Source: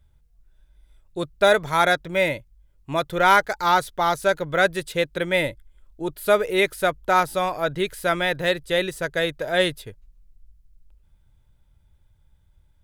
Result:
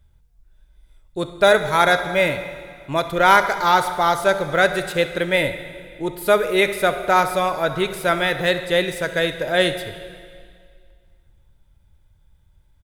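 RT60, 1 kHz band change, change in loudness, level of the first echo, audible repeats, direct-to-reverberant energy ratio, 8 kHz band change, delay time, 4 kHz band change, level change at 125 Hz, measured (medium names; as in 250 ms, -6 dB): 2.1 s, +3.0 dB, +3.0 dB, -17.5 dB, 1, 9.0 dB, +3.0 dB, 67 ms, +3.0 dB, +3.0 dB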